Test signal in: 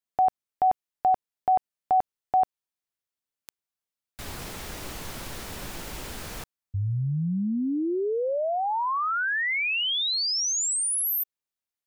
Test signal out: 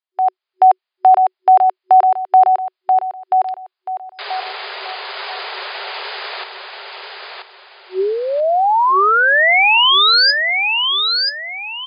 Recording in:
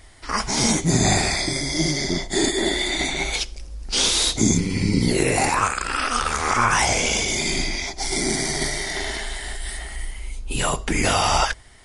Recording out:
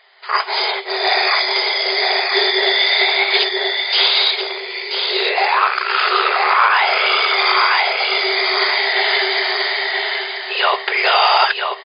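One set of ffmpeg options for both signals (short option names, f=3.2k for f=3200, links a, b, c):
-filter_complex "[0:a]equalizer=f=490:t=o:w=0.52:g=-8.5,aecho=1:1:983|1966|2949|3932:0.596|0.185|0.0572|0.0177,dynaudnorm=f=120:g=5:m=11.5dB,asplit=2[a][b];[b]aeval=exprs='(mod(2*val(0)+1,2)-1)/2':c=same,volume=-10dB[c];[a][c]amix=inputs=2:normalize=0,afftfilt=real='re*between(b*sr/4096,370,5000)':imag='im*between(b*sr/4096,370,5000)':win_size=4096:overlap=0.75"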